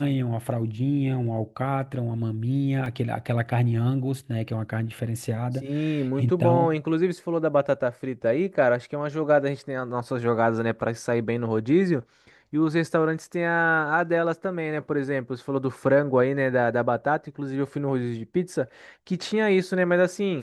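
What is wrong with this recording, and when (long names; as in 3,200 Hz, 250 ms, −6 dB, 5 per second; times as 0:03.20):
0:02.86: drop-out 2 ms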